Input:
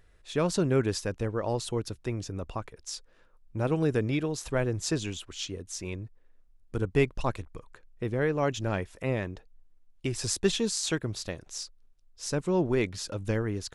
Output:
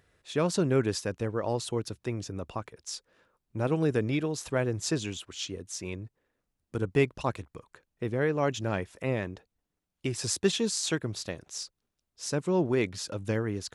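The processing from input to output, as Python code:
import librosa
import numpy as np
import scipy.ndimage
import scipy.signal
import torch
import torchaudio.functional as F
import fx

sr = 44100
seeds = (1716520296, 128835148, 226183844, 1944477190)

y = scipy.signal.sosfilt(scipy.signal.butter(2, 90.0, 'highpass', fs=sr, output='sos'), x)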